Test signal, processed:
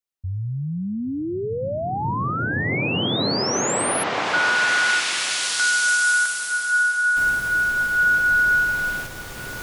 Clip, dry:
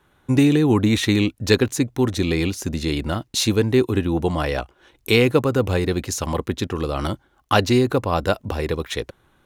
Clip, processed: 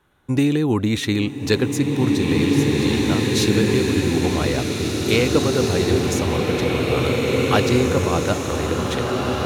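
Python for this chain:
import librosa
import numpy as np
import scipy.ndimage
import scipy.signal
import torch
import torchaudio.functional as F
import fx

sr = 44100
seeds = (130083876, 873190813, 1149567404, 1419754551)

y = fx.rev_bloom(x, sr, seeds[0], attack_ms=2310, drr_db=-2.5)
y = y * librosa.db_to_amplitude(-2.5)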